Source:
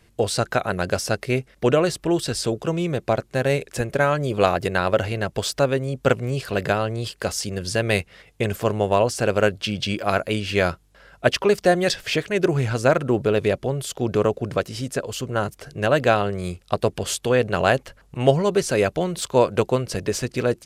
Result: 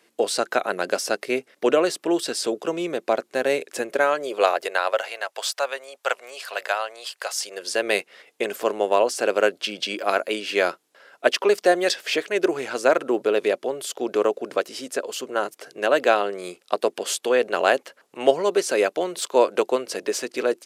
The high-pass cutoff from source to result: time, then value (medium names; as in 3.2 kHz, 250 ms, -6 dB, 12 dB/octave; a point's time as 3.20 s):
high-pass 24 dB/octave
3.80 s 270 Hz
5.18 s 650 Hz
7.28 s 650 Hz
7.86 s 300 Hz